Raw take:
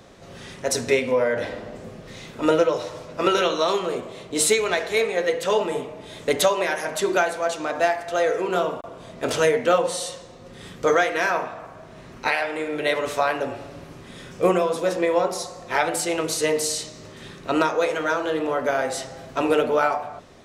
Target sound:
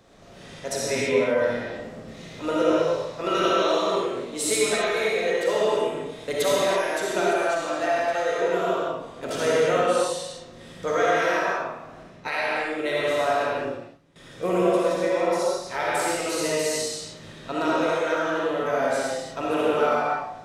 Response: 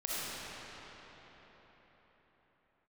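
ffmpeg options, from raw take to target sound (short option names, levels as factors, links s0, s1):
-filter_complex "[0:a]asettb=1/sr,asplit=3[s0][s1][s2];[s0]atrim=end=12.034[s3];[s1]atrim=start=12.03:end=14.16,asetpts=PTS-STARTPTS,afade=t=in:d=0.004:c=qsin,afade=t=out:st=2.126:d=0.004:c=qsin,agate=range=0.112:threshold=0.0178:ratio=16:detection=peak[s4];[s2]atrim=start=14.156[s5];[s3][s4]acrossfade=d=0.004:c1=hsin:c2=qsin[s6];[s6][s5]acrossfade=d=0.004:c1=qsin:c2=hsin[s7];[1:a]atrim=start_sample=2205,afade=t=out:st=0.39:d=0.01,atrim=end_sample=17640[s8];[s7][s8]afir=irnorm=-1:irlink=0,volume=0.531"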